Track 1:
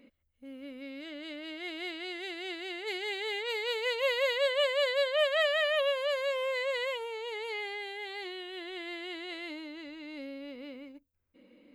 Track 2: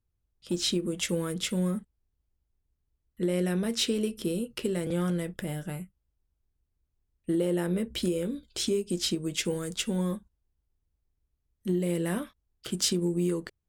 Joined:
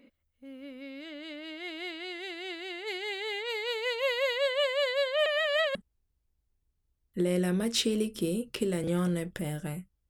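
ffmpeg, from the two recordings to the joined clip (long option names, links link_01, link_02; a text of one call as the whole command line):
ffmpeg -i cue0.wav -i cue1.wav -filter_complex "[0:a]apad=whole_dur=10.09,atrim=end=10.09,asplit=2[link_01][link_02];[link_01]atrim=end=5.262[link_03];[link_02]atrim=start=5.258:end=5.752,asetpts=PTS-STARTPTS,areverse[link_04];[1:a]atrim=start=1.778:end=6.12[link_05];[link_03][link_04]acrossfade=duration=0.004:curve1=hsin:curve2=hsin[link_06];[link_06][link_05]acrossfade=duration=0.004:curve1=hsin:curve2=hsin" out.wav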